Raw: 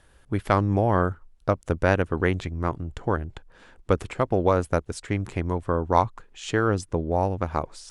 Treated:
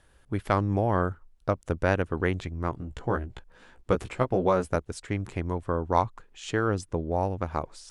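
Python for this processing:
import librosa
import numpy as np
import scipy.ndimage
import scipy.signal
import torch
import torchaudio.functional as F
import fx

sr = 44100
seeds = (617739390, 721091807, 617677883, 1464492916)

y = fx.doubler(x, sr, ms=16.0, db=-4.5, at=(2.76, 4.76))
y = F.gain(torch.from_numpy(y), -3.5).numpy()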